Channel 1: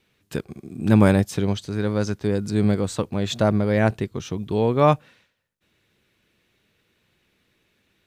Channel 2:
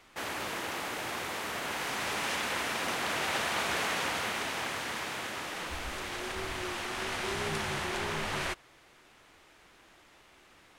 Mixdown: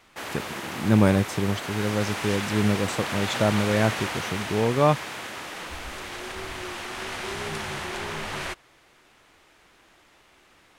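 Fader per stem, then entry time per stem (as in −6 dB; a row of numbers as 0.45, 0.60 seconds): −3.0, +1.5 decibels; 0.00, 0.00 seconds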